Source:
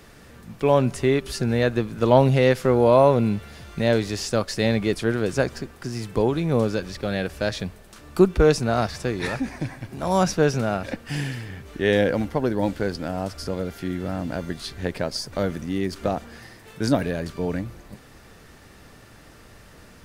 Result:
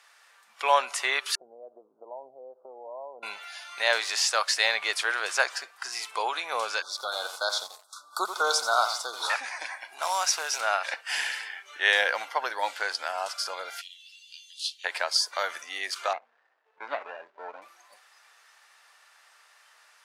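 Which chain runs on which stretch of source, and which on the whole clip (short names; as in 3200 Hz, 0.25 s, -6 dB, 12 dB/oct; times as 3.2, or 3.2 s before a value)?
1.35–3.23 compressor 12:1, threshold -21 dBFS + Gaussian blur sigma 14 samples + bell 88 Hz +6.5 dB 0.73 oct
6.82–9.3 Chebyshev band-stop 1500–3400 Hz, order 5 + lo-fi delay 87 ms, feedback 35%, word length 6-bit, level -9 dB
10.02–10.61 tone controls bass +1 dB, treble +5 dB + compressor 8:1, threshold -22 dBFS + short-mantissa float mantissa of 2-bit
13.81–14.84 Chebyshev band-stop 140–2800 Hz, order 4 + high shelf 4800 Hz -4.5 dB
16.13–17.62 median filter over 41 samples + tape spacing loss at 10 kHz 24 dB
whole clip: HPF 850 Hz 24 dB/oct; spectral noise reduction 11 dB; LPF 11000 Hz 12 dB/oct; gain +6 dB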